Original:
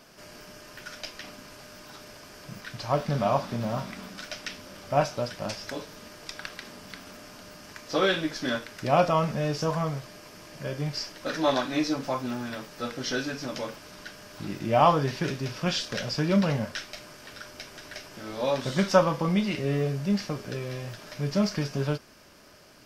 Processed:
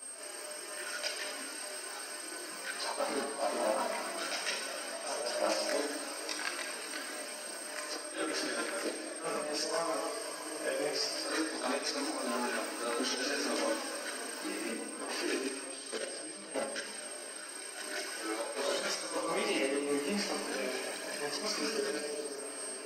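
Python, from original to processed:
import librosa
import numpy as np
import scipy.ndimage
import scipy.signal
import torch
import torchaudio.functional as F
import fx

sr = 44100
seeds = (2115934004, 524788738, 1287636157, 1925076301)

y = fx.reverse_delay(x, sr, ms=129, wet_db=-13.0)
y = scipy.signal.sosfilt(scipy.signal.butter(6, 290.0, 'highpass', fs=sr, output='sos'), y)
y = fx.over_compress(y, sr, threshold_db=-33.0, ratio=-0.5)
y = fx.echo_diffused(y, sr, ms=588, feedback_pct=59, wet_db=-12.0)
y = fx.level_steps(y, sr, step_db=15, at=(15.36, 17.77))
y = fx.notch(y, sr, hz=3500.0, q=7.9)
y = fx.rev_schroeder(y, sr, rt60_s=1.5, comb_ms=28, drr_db=4.0)
y = y + 10.0 ** (-42.0 / 20.0) * np.sin(2.0 * np.pi * 8500.0 * np.arange(len(y)) / sr)
y = fx.chorus_voices(y, sr, voices=4, hz=0.16, base_ms=22, depth_ms=3.9, mix_pct=60)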